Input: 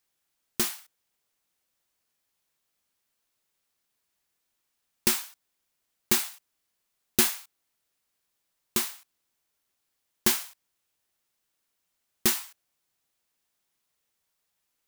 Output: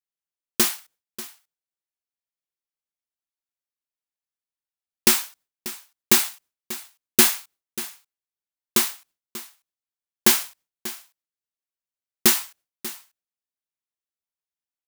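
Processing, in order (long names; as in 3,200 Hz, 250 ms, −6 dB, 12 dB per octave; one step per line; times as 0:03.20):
noise gate with hold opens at −50 dBFS
leveller curve on the samples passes 1
single-tap delay 589 ms −16 dB
level +4 dB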